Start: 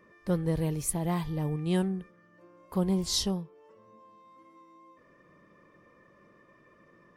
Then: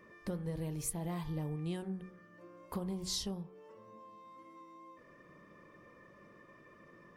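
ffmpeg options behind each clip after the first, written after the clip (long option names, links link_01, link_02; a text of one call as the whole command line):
ffmpeg -i in.wav -af "acompressor=threshold=-37dB:ratio=5,bandreject=frequency=46.39:width_type=h:width=4,bandreject=frequency=92.78:width_type=h:width=4,bandreject=frequency=139.17:width_type=h:width=4,bandreject=frequency=185.56:width_type=h:width=4,bandreject=frequency=231.95:width_type=h:width=4,bandreject=frequency=278.34:width_type=h:width=4,bandreject=frequency=324.73:width_type=h:width=4,bandreject=frequency=371.12:width_type=h:width=4,bandreject=frequency=417.51:width_type=h:width=4,bandreject=frequency=463.9:width_type=h:width=4,bandreject=frequency=510.29:width_type=h:width=4,bandreject=frequency=556.68:width_type=h:width=4,bandreject=frequency=603.07:width_type=h:width=4,bandreject=frequency=649.46:width_type=h:width=4,bandreject=frequency=695.85:width_type=h:width=4,bandreject=frequency=742.24:width_type=h:width=4,bandreject=frequency=788.63:width_type=h:width=4,bandreject=frequency=835.02:width_type=h:width=4,bandreject=frequency=881.41:width_type=h:width=4,bandreject=frequency=927.8:width_type=h:width=4,bandreject=frequency=974.19:width_type=h:width=4,bandreject=frequency=1020.58:width_type=h:width=4,bandreject=frequency=1066.97:width_type=h:width=4,bandreject=frequency=1113.36:width_type=h:width=4,bandreject=frequency=1159.75:width_type=h:width=4,bandreject=frequency=1206.14:width_type=h:width=4,bandreject=frequency=1252.53:width_type=h:width=4,bandreject=frequency=1298.92:width_type=h:width=4,bandreject=frequency=1345.31:width_type=h:width=4,bandreject=frequency=1391.7:width_type=h:width=4,bandreject=frequency=1438.09:width_type=h:width=4,bandreject=frequency=1484.48:width_type=h:width=4,bandreject=frequency=1530.87:width_type=h:width=4,bandreject=frequency=1577.26:width_type=h:width=4,bandreject=frequency=1623.65:width_type=h:width=4,bandreject=frequency=1670.04:width_type=h:width=4,bandreject=frequency=1716.43:width_type=h:width=4,volume=1.5dB" out.wav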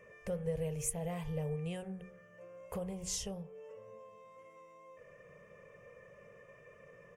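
ffmpeg -i in.wav -af "firequalizer=gain_entry='entry(140,0);entry(310,-20);entry(460,7);entry(960,-7);entry(2700,4);entry(4000,-14);entry(6500,3);entry(13000,-5)':delay=0.05:min_phase=1,volume=2dB" out.wav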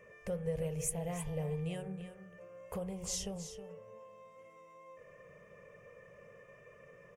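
ffmpeg -i in.wav -af "aecho=1:1:319:0.282" out.wav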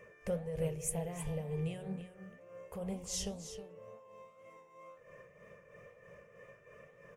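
ffmpeg -i in.wav -af "tremolo=f=3.1:d=0.6,flanger=delay=7:depth=9.7:regen=84:speed=2:shape=triangular,volume=7dB" out.wav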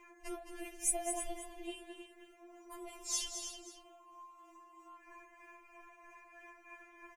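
ffmpeg -i in.wav -af "aecho=1:1:216:0.376,afftfilt=real='re*4*eq(mod(b,16),0)':imag='im*4*eq(mod(b,16),0)':win_size=2048:overlap=0.75,volume=6dB" out.wav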